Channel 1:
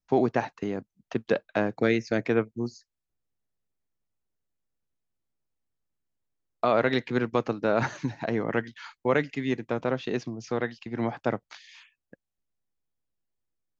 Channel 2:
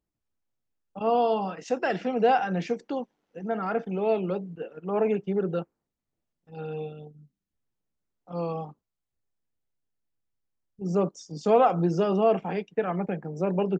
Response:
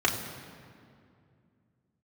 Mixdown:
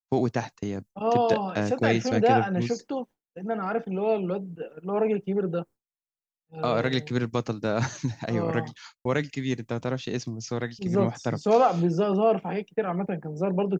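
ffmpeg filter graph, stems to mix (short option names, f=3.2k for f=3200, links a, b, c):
-filter_complex "[0:a]bass=f=250:g=6,treble=f=4k:g=15,volume=-3.5dB[a];[1:a]volume=0dB[b];[a][b]amix=inputs=2:normalize=0,equalizer=f=87:t=o:w=0.98:g=5.5,agate=range=-33dB:threshold=-40dB:ratio=3:detection=peak"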